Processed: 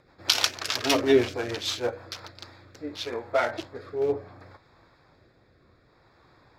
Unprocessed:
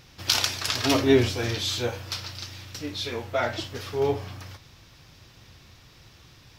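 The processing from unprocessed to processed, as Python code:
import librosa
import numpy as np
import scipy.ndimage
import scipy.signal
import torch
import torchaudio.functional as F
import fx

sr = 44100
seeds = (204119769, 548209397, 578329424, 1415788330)

y = fx.wiener(x, sr, points=15)
y = fx.bass_treble(y, sr, bass_db=-14, treble_db=-2)
y = fx.rotary_switch(y, sr, hz=6.3, then_hz=0.65, switch_at_s=1.91)
y = y * librosa.db_to_amplitude(4.0)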